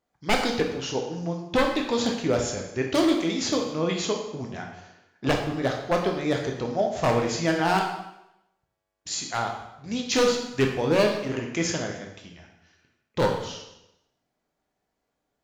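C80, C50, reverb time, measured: 7.5 dB, 5.0 dB, 0.85 s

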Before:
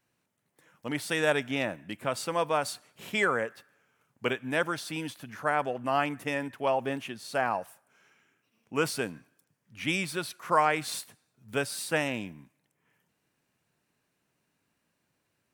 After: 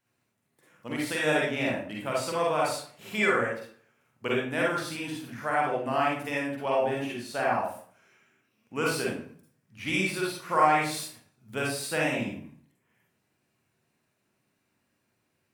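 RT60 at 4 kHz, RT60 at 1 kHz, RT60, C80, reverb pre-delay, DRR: 0.35 s, 0.45 s, 0.50 s, 6.5 dB, 40 ms, -4.5 dB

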